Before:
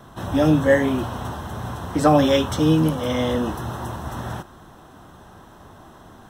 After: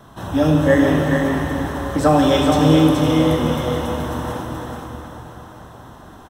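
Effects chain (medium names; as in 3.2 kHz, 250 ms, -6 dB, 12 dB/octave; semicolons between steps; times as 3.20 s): on a send: delay 426 ms -4.5 dB; on the sum: plate-style reverb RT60 4.4 s, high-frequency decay 0.8×, DRR 1 dB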